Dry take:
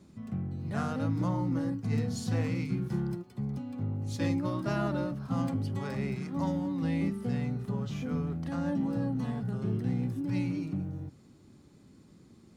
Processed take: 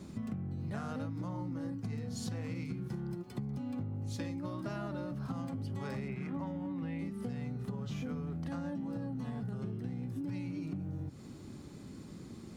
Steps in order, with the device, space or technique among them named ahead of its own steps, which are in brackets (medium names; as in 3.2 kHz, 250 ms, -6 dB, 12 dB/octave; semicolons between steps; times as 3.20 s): serial compression, leveller first (compression 2:1, threshold -34 dBFS, peak gain reduction 5.5 dB; compression 10:1, threshold -44 dBFS, peak gain reduction 14.5 dB); 6.08–6.99 s: resonant high shelf 3.5 kHz -9 dB, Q 1.5; trim +8.5 dB